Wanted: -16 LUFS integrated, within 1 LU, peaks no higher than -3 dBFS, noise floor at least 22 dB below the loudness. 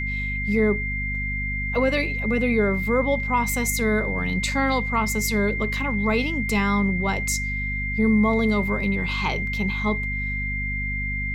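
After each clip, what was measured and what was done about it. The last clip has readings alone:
hum 50 Hz; highest harmonic 250 Hz; hum level -27 dBFS; steady tone 2.1 kHz; tone level -27 dBFS; loudness -23.0 LUFS; peak level -8.5 dBFS; loudness target -16.0 LUFS
-> hum notches 50/100/150/200/250 Hz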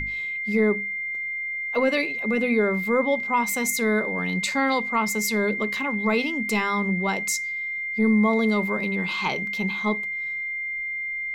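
hum not found; steady tone 2.1 kHz; tone level -27 dBFS
-> band-stop 2.1 kHz, Q 30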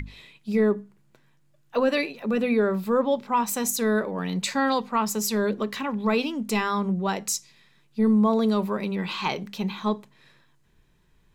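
steady tone not found; loudness -25.0 LUFS; peak level -11.0 dBFS; loudness target -16.0 LUFS
-> trim +9 dB; peak limiter -3 dBFS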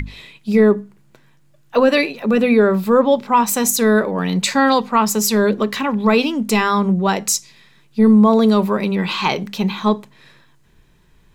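loudness -16.5 LUFS; peak level -3.0 dBFS; noise floor -53 dBFS

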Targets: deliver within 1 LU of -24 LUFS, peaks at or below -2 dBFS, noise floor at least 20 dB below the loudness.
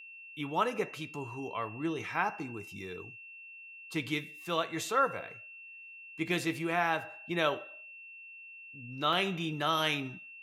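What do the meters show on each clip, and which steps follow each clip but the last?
dropouts 1; longest dropout 4.1 ms; steady tone 2.7 kHz; tone level -47 dBFS; loudness -33.0 LUFS; peak level -15.0 dBFS; loudness target -24.0 LUFS
-> interpolate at 9.13 s, 4.1 ms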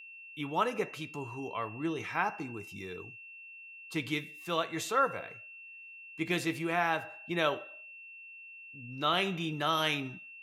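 dropouts 0; steady tone 2.7 kHz; tone level -47 dBFS
-> band-stop 2.7 kHz, Q 30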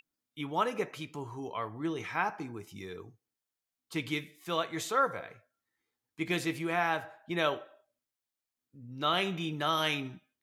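steady tone not found; loudness -33.0 LUFS; peak level -15.5 dBFS; loudness target -24.0 LUFS
-> trim +9 dB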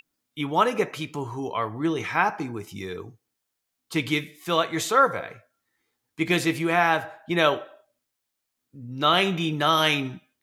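loudness -24.0 LUFS; peak level -6.5 dBFS; noise floor -81 dBFS

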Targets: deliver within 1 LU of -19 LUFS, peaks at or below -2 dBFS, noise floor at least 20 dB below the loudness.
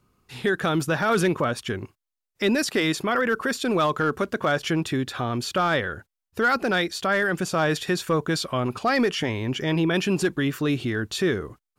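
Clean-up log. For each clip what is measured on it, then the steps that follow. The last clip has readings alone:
clipped samples 0.3%; clipping level -14.5 dBFS; loudness -24.5 LUFS; peak level -14.5 dBFS; loudness target -19.0 LUFS
-> clip repair -14.5 dBFS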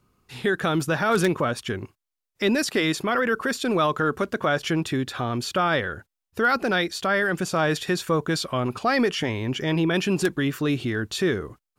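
clipped samples 0.0%; loudness -24.0 LUFS; peak level -5.5 dBFS; loudness target -19.0 LUFS
-> trim +5 dB; peak limiter -2 dBFS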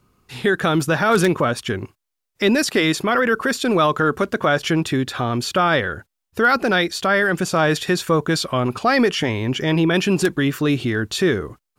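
loudness -19.5 LUFS; peak level -2.0 dBFS; noise floor -80 dBFS

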